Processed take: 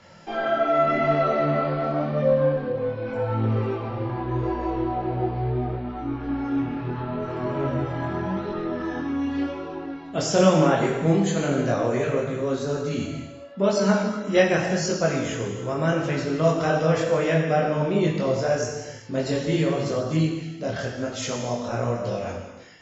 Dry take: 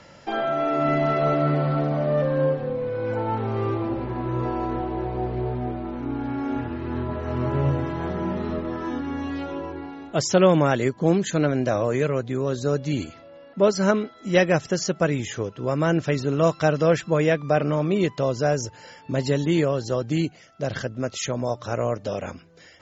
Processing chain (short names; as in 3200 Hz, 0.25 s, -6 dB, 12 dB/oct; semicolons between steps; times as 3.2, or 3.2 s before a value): non-linear reverb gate 0.44 s falling, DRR 0 dB; chorus voices 2, 0.87 Hz, delay 22 ms, depth 3.5 ms